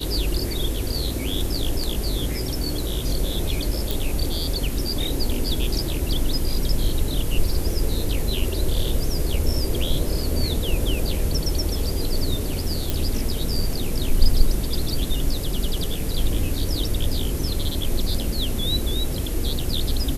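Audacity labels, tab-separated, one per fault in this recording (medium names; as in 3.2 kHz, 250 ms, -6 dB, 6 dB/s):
3.910000	3.910000	pop
12.900000	12.900000	pop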